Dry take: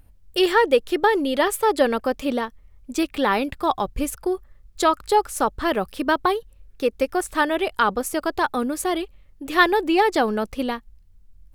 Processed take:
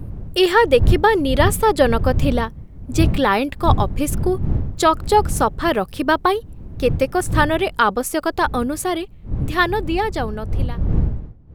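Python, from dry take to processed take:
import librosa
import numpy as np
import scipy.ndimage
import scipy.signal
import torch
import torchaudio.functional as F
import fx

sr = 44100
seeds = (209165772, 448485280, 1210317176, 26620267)

y = fx.fade_out_tail(x, sr, length_s=3.24)
y = fx.dmg_wind(y, sr, seeds[0], corner_hz=100.0, level_db=-26.0)
y = y * 10.0 ** (3.5 / 20.0)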